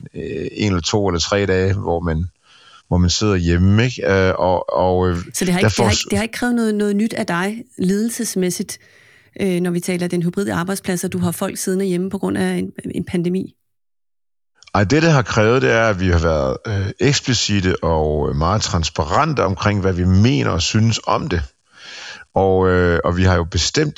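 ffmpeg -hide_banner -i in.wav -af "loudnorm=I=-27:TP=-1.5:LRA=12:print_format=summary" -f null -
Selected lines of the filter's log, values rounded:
Input Integrated:    -17.7 LUFS
Input True Peak:      -1.4 dBTP
Input LRA:             4.9 LU
Input Threshold:     -28.1 LUFS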